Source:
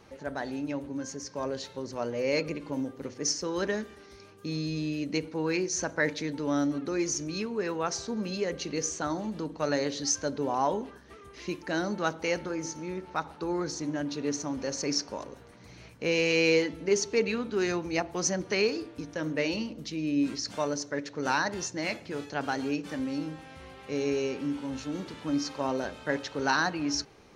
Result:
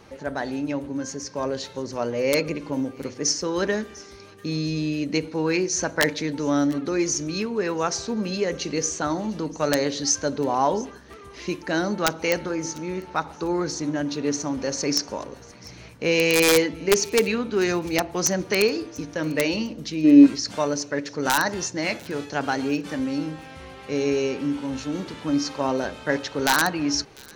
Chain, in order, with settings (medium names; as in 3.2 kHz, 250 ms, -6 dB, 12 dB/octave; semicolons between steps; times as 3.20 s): integer overflow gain 15 dB; feedback echo behind a high-pass 697 ms, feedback 32%, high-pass 2.3 kHz, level -21 dB; time-frequency box 20.04–20.26 s, 230–2100 Hz +10 dB; trim +6 dB